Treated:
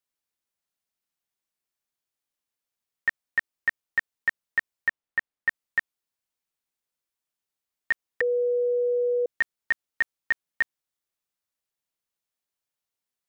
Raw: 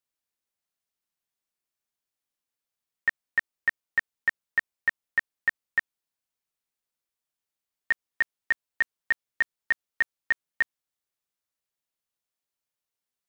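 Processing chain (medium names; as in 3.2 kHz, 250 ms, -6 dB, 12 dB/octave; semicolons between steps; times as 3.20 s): 4.89–5.48 s: treble shelf 4.2 kHz -11 dB; 8.21–9.26 s: bleep 487 Hz -21 dBFS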